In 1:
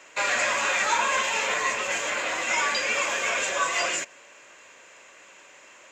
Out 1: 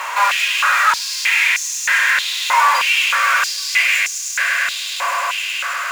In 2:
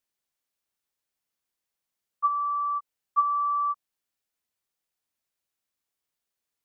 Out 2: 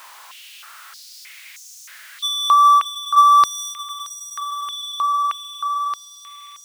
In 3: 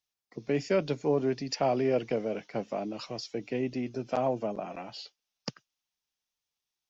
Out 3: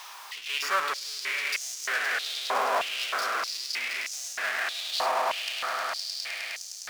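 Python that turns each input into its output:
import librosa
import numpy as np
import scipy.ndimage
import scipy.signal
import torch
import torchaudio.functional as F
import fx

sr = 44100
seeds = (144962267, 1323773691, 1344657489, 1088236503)

p1 = fx.high_shelf(x, sr, hz=4300.0, db=-9.0)
p2 = p1 + fx.echo_swell(p1, sr, ms=103, loudest=5, wet_db=-12.5, dry=0)
p3 = fx.power_curve(p2, sr, exponent=0.35)
p4 = fx.hpss(p3, sr, part='percussive', gain_db=-5)
y = fx.filter_held_highpass(p4, sr, hz=3.2, low_hz=990.0, high_hz=6200.0)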